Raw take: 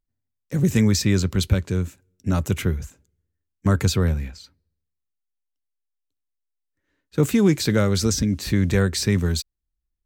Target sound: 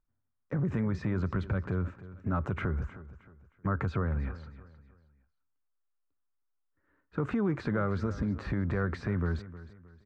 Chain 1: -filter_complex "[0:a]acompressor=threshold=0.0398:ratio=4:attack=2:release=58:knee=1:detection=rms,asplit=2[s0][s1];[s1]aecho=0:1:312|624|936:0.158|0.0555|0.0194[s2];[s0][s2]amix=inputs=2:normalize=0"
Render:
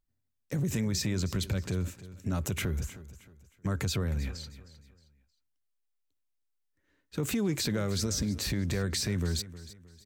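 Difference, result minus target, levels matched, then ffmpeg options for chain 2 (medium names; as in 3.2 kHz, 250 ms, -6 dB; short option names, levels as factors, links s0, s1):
1 kHz band -7.5 dB
-filter_complex "[0:a]acompressor=threshold=0.0398:ratio=4:attack=2:release=58:knee=1:detection=rms,lowpass=f=1300:t=q:w=2.5,asplit=2[s0][s1];[s1]aecho=0:1:312|624|936:0.158|0.0555|0.0194[s2];[s0][s2]amix=inputs=2:normalize=0"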